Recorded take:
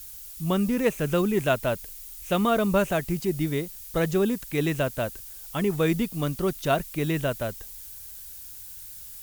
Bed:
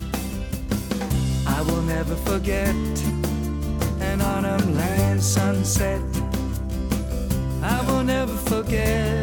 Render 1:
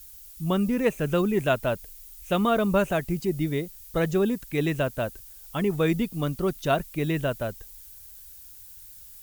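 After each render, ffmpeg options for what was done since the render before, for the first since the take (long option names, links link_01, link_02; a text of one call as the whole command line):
ffmpeg -i in.wav -af "afftdn=noise_reduction=6:noise_floor=-42" out.wav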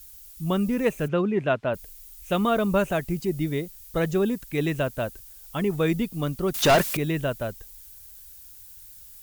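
ffmpeg -i in.wav -filter_complex "[0:a]asplit=3[link_01][link_02][link_03];[link_01]afade=type=out:start_time=1.07:duration=0.02[link_04];[link_02]highpass=110,lowpass=2800,afade=type=in:start_time=1.07:duration=0.02,afade=type=out:start_time=1.73:duration=0.02[link_05];[link_03]afade=type=in:start_time=1.73:duration=0.02[link_06];[link_04][link_05][link_06]amix=inputs=3:normalize=0,asettb=1/sr,asplit=3[link_07][link_08][link_09];[link_07]atrim=end=6.544[link_10];[link_08]atrim=start=6.54:end=6.97,asetpts=PTS-STARTPTS,afade=type=in:duration=0.004:curve=qsin,afade=type=out:start_time=0.426:duration=0.004:curve=qsin,asplit=2[link_11][link_12];[link_12]highpass=frequency=720:poles=1,volume=30dB,asoftclip=type=tanh:threshold=-10.5dB[link_13];[link_11][link_13]amix=inputs=2:normalize=0,lowpass=frequency=5800:poles=1,volume=-6dB[link_14];[link_09]atrim=start=6.966[link_15];[link_10][link_14]acrossfade=duration=0.004:curve1=hsin:curve2=qsin[link_16];[link_16][link_15]acrossfade=duration=0.004:curve1=qsin:curve2=hsin" out.wav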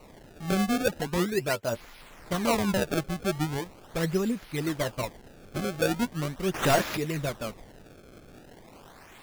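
ffmpeg -i in.wav -af "flanger=delay=3.7:depth=6.9:regen=36:speed=0.94:shape=triangular,acrusher=samples=26:mix=1:aa=0.000001:lfo=1:lforange=41.6:lforate=0.4" out.wav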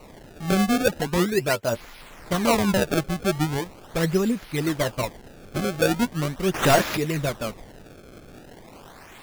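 ffmpeg -i in.wav -af "volume=5dB" out.wav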